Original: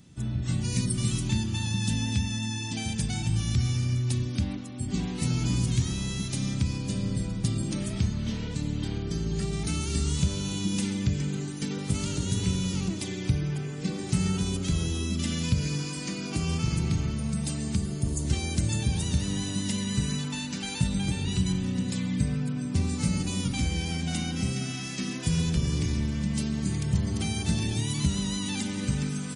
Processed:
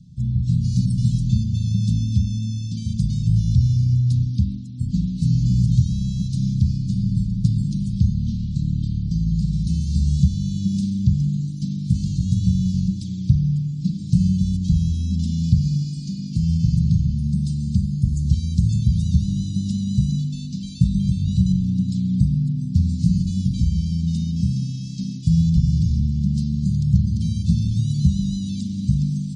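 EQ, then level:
elliptic band-stop filter 180–4,300 Hz, stop band 70 dB
high-frequency loss of the air 120 metres
low shelf with overshoot 380 Hz +6.5 dB, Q 1.5
+3.0 dB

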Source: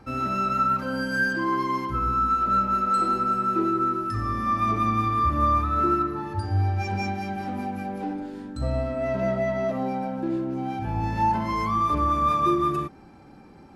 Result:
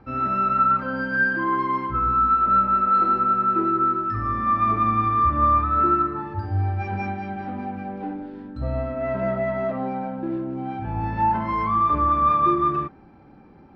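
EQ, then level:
dynamic equaliser 1,400 Hz, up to +6 dB, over −37 dBFS, Q 0.95
high-frequency loss of the air 300 metres
0.0 dB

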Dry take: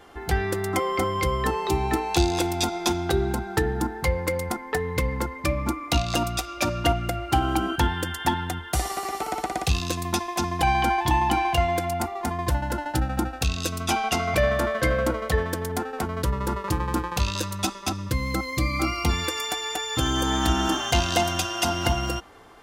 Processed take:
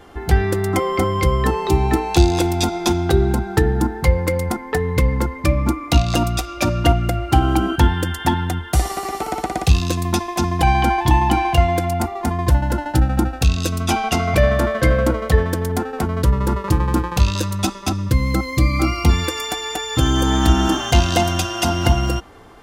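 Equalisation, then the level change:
low-shelf EQ 350 Hz +7.5 dB
+3.0 dB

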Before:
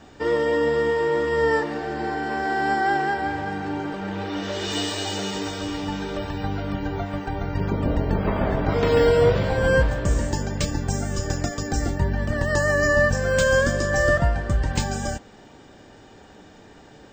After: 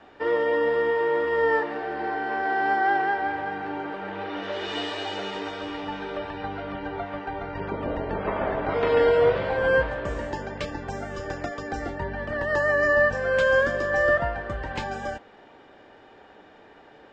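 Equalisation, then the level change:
three-way crossover with the lows and the highs turned down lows −13 dB, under 340 Hz, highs −23 dB, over 3,500 Hz
0.0 dB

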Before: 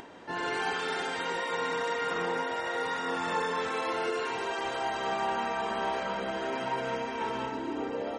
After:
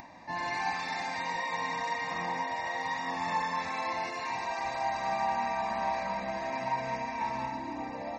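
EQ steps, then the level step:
phaser with its sweep stopped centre 2,100 Hz, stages 8
+2.0 dB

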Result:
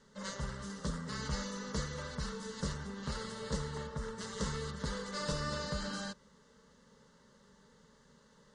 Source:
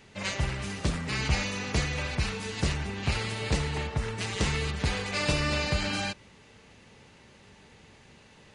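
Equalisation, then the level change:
low-pass filter 8,700 Hz 24 dB per octave
phaser with its sweep stopped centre 490 Hz, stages 8
−5.0 dB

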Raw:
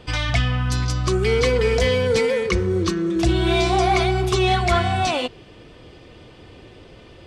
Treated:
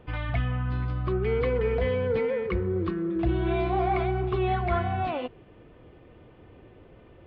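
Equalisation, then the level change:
Gaussian smoothing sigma 3.6 samples
−6.5 dB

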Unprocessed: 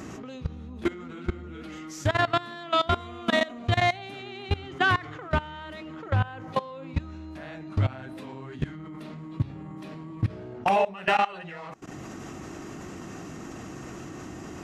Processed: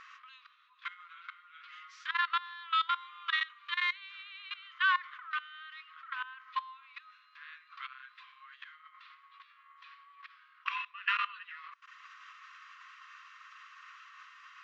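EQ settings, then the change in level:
linear-phase brick-wall high-pass 1,000 Hz
low-pass filter 4,000 Hz 24 dB per octave
−3.5 dB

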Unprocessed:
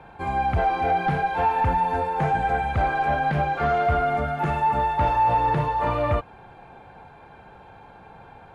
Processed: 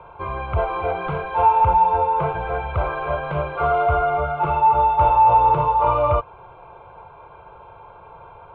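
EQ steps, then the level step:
high-frequency loss of the air 230 metres
parametric band 880 Hz +13.5 dB 0.72 octaves
phaser with its sweep stopped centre 1,200 Hz, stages 8
+3.0 dB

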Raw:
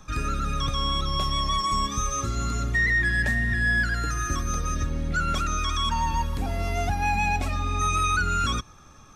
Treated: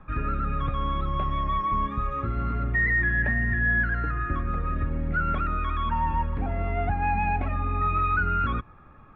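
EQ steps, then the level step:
inverse Chebyshev low-pass filter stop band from 6,900 Hz, stop band 60 dB
0.0 dB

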